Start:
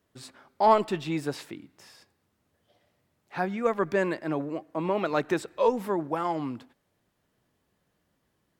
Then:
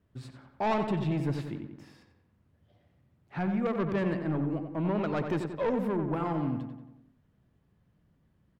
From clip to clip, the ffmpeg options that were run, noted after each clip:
ffmpeg -i in.wav -filter_complex "[0:a]bass=frequency=250:gain=14,treble=frequency=4000:gain=-9,asoftclip=type=tanh:threshold=-20dB,asplit=2[link_01][link_02];[link_02]adelay=91,lowpass=frequency=3000:poles=1,volume=-6.5dB,asplit=2[link_03][link_04];[link_04]adelay=91,lowpass=frequency=3000:poles=1,volume=0.55,asplit=2[link_05][link_06];[link_06]adelay=91,lowpass=frequency=3000:poles=1,volume=0.55,asplit=2[link_07][link_08];[link_08]adelay=91,lowpass=frequency=3000:poles=1,volume=0.55,asplit=2[link_09][link_10];[link_10]adelay=91,lowpass=frequency=3000:poles=1,volume=0.55,asplit=2[link_11][link_12];[link_12]adelay=91,lowpass=frequency=3000:poles=1,volume=0.55,asplit=2[link_13][link_14];[link_14]adelay=91,lowpass=frequency=3000:poles=1,volume=0.55[link_15];[link_01][link_03][link_05][link_07][link_09][link_11][link_13][link_15]amix=inputs=8:normalize=0,volume=-4dB" out.wav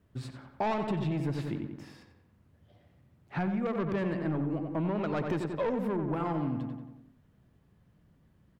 ffmpeg -i in.wav -af "acompressor=threshold=-32dB:ratio=6,volume=4dB" out.wav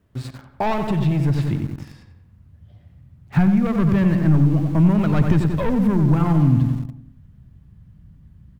ffmpeg -i in.wav -filter_complex "[0:a]asplit=2[link_01][link_02];[link_02]aeval=exprs='val(0)*gte(abs(val(0)),0.00794)':channel_layout=same,volume=-3dB[link_03];[link_01][link_03]amix=inputs=2:normalize=0,asubboost=boost=8.5:cutoff=150,volume=4dB" out.wav

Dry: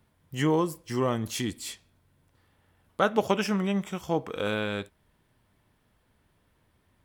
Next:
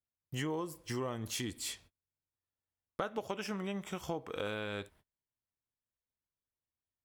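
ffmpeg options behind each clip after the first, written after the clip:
ffmpeg -i in.wav -af "agate=range=-33dB:threshold=-55dB:ratio=16:detection=peak,equalizer=frequency=190:width=1.7:gain=-4,acompressor=threshold=-35dB:ratio=5" out.wav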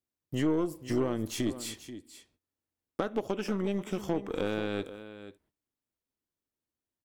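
ffmpeg -i in.wav -af "equalizer=frequency=300:width_type=o:width=1.4:gain=11.5,aecho=1:1:485:0.224,aeval=exprs='0.178*(cos(1*acos(clip(val(0)/0.178,-1,1)))-cos(1*PI/2))+0.00891*(cos(8*acos(clip(val(0)/0.178,-1,1)))-cos(8*PI/2))':channel_layout=same" out.wav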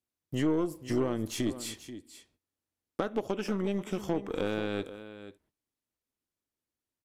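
ffmpeg -i in.wav -af "aresample=32000,aresample=44100" out.wav

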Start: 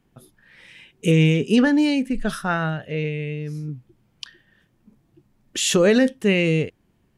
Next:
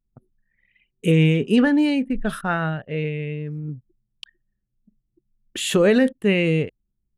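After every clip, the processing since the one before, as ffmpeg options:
ffmpeg -i in.wav -af "anlmdn=1,equalizer=frequency=5700:width=1.9:gain=-12.5" out.wav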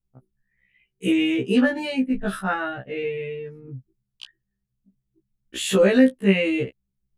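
ffmpeg -i in.wav -af "afftfilt=real='re*1.73*eq(mod(b,3),0)':imag='im*1.73*eq(mod(b,3),0)':win_size=2048:overlap=0.75,volume=1.5dB" out.wav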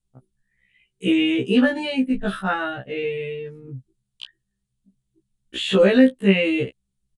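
ffmpeg -i in.wav -filter_complex "[0:a]aexciter=amount=1.7:drive=5.6:freq=3000,aresample=22050,aresample=44100,acrossover=split=4000[link_01][link_02];[link_02]acompressor=threshold=-51dB:ratio=4:attack=1:release=60[link_03];[link_01][link_03]amix=inputs=2:normalize=0,volume=1.5dB" out.wav

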